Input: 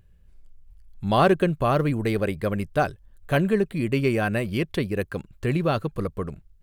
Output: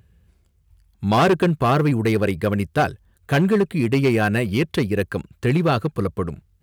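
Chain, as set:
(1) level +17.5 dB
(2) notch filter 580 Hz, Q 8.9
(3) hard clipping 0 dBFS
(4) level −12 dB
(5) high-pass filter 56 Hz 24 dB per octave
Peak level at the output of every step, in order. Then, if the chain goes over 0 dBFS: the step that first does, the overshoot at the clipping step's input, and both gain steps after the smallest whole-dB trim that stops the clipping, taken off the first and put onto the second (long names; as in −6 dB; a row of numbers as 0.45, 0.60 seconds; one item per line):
+9.5, +9.0, 0.0, −12.0, −7.5 dBFS
step 1, 9.0 dB
step 1 +8.5 dB, step 4 −3 dB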